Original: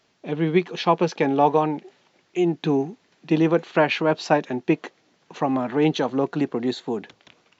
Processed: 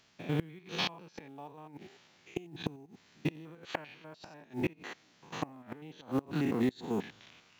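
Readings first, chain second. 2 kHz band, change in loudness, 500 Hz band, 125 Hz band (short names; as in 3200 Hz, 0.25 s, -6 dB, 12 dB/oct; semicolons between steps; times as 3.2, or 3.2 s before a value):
-13.5 dB, -14.5 dB, -18.5 dB, -11.0 dB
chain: stepped spectrum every 0.1 s; bell 460 Hz -8 dB 2.1 oct; flipped gate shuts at -22 dBFS, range -25 dB; short-mantissa float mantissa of 4-bit; gain +2.5 dB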